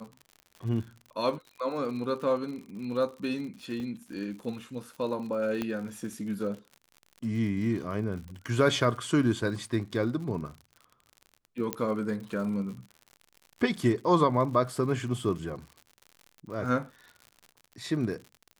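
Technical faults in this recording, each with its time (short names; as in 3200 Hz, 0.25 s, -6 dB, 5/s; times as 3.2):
crackle 72/s -39 dBFS
3.8 gap 2.9 ms
5.62 pop -17 dBFS
11.73 pop -12 dBFS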